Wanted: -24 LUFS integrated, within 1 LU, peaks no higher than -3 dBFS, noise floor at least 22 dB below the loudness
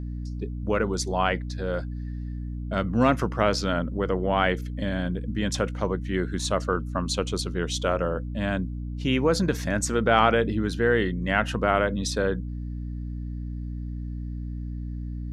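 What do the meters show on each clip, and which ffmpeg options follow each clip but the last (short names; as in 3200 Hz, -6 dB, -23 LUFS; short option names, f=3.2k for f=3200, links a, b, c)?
hum 60 Hz; harmonics up to 300 Hz; hum level -30 dBFS; loudness -26.5 LUFS; peak -5.5 dBFS; loudness target -24.0 LUFS
-> -af "bandreject=f=60:t=h:w=6,bandreject=f=120:t=h:w=6,bandreject=f=180:t=h:w=6,bandreject=f=240:t=h:w=6,bandreject=f=300:t=h:w=6"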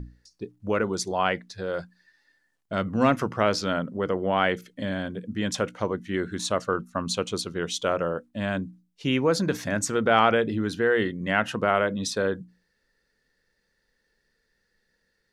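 hum none; loudness -26.0 LUFS; peak -5.5 dBFS; loudness target -24.0 LUFS
-> -af "volume=2dB"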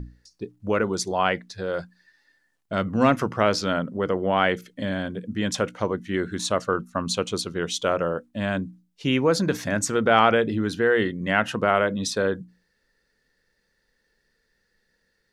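loudness -24.5 LUFS; peak -3.5 dBFS; noise floor -72 dBFS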